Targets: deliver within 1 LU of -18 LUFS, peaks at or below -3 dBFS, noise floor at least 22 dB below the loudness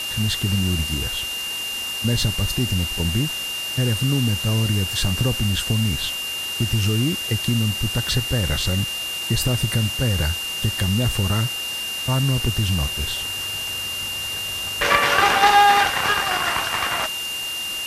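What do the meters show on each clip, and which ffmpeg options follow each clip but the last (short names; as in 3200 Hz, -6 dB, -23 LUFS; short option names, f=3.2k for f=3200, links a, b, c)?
steady tone 2800 Hz; tone level -26 dBFS; noise floor -28 dBFS; noise floor target -43 dBFS; loudness -21.0 LUFS; peak -2.5 dBFS; loudness target -18.0 LUFS
-> -af "bandreject=f=2.8k:w=30"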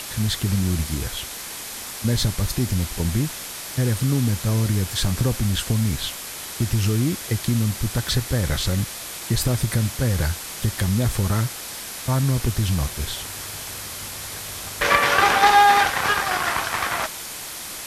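steady tone none; noise floor -34 dBFS; noise floor target -45 dBFS
-> -af "afftdn=nr=11:nf=-34"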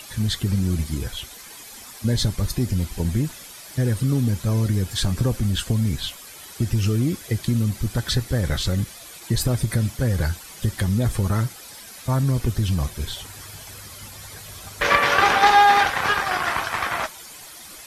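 noise floor -42 dBFS; noise floor target -44 dBFS
-> -af "afftdn=nr=6:nf=-42"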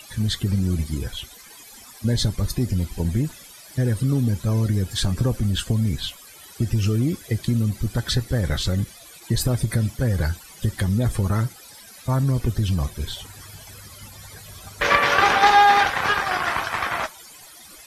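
noise floor -45 dBFS; loudness -22.5 LUFS; peak -3.0 dBFS; loudness target -18.0 LUFS
-> -af "volume=4.5dB,alimiter=limit=-3dB:level=0:latency=1"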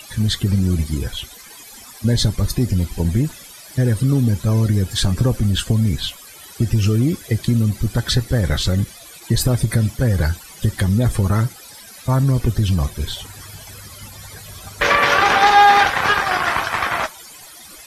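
loudness -18.0 LUFS; peak -3.0 dBFS; noise floor -41 dBFS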